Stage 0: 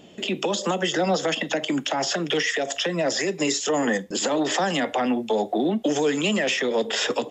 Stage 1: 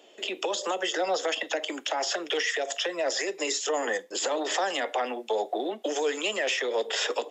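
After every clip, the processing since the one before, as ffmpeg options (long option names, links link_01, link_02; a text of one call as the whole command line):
ffmpeg -i in.wav -af "highpass=frequency=380:width=0.5412,highpass=frequency=380:width=1.3066,volume=-3.5dB" out.wav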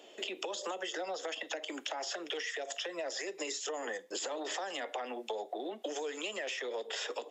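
ffmpeg -i in.wav -af "acompressor=threshold=-36dB:ratio=6" out.wav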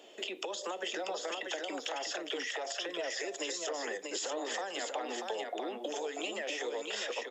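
ffmpeg -i in.wav -af "aecho=1:1:639:0.631" out.wav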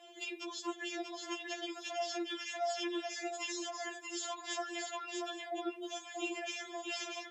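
ffmpeg -i in.wav -af "afftfilt=real='re*4*eq(mod(b,16),0)':imag='im*4*eq(mod(b,16),0)':win_size=2048:overlap=0.75" out.wav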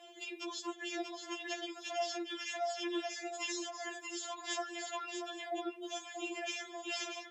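ffmpeg -i in.wav -af "tremolo=f=2:d=0.38,volume=1.5dB" out.wav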